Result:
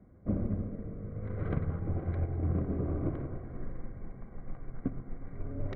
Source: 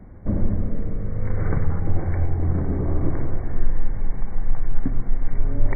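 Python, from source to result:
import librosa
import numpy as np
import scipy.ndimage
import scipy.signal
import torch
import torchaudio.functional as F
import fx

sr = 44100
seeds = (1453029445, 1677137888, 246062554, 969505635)

p1 = fx.self_delay(x, sr, depth_ms=0.59)
p2 = fx.high_shelf(p1, sr, hz=2000.0, db=-8.0)
p3 = fx.notch_comb(p2, sr, f0_hz=890.0)
p4 = p3 + fx.echo_single(p3, sr, ms=211, db=-20.5, dry=0)
p5 = fx.upward_expand(p4, sr, threshold_db=-35.0, expansion=1.5)
y = p5 * librosa.db_to_amplitude(-4.5)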